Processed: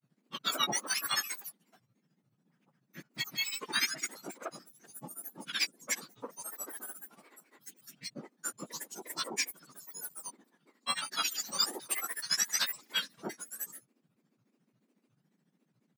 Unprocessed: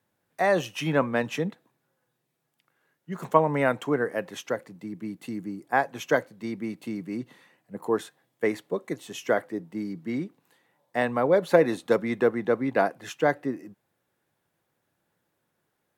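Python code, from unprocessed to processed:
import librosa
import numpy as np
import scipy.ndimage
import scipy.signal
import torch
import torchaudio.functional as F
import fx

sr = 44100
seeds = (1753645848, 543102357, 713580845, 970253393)

y = fx.octave_mirror(x, sr, pivot_hz=1700.0)
y = fx.granulator(y, sr, seeds[0], grain_ms=104.0, per_s=14.0, spray_ms=234.0, spread_st=7)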